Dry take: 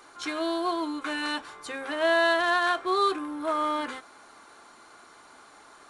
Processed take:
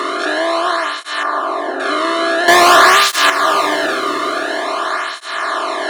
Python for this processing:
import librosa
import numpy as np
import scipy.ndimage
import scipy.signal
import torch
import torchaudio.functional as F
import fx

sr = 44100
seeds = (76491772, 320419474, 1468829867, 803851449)

y = fx.bin_compress(x, sr, power=0.2)
y = fx.lowpass(y, sr, hz=1400.0, slope=24, at=(1.23, 1.8))
y = fx.leveller(y, sr, passes=5, at=(2.48, 3.3))
y = fx.echo_diffused(y, sr, ms=483, feedback_pct=43, wet_db=-11)
y = fx.flanger_cancel(y, sr, hz=0.48, depth_ms=1.3)
y = y * librosa.db_to_amplitude(5.5)